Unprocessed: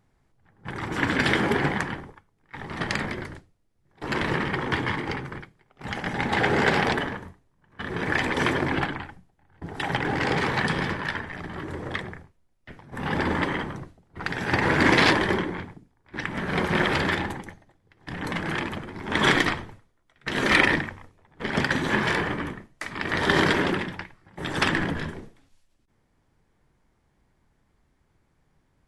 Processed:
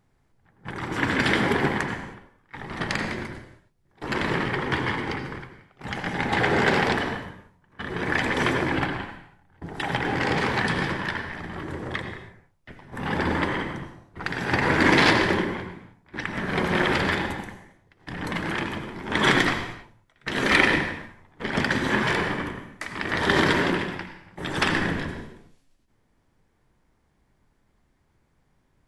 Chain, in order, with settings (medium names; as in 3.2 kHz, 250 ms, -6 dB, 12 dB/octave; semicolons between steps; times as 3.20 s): de-hum 49.68 Hz, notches 3; on a send: reverberation, pre-delay 77 ms, DRR 7.5 dB